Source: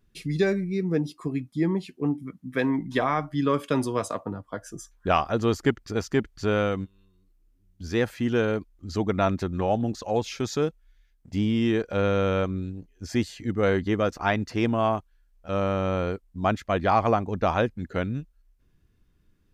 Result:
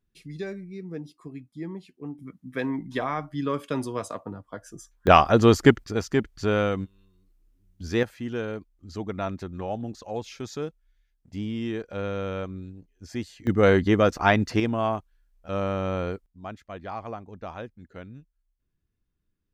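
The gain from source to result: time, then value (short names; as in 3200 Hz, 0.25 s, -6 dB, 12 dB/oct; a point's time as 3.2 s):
-11 dB
from 2.19 s -4 dB
from 5.07 s +7 dB
from 5.84 s +0.5 dB
from 8.03 s -7 dB
from 13.47 s +4.5 dB
from 14.6 s -2 dB
from 16.26 s -14 dB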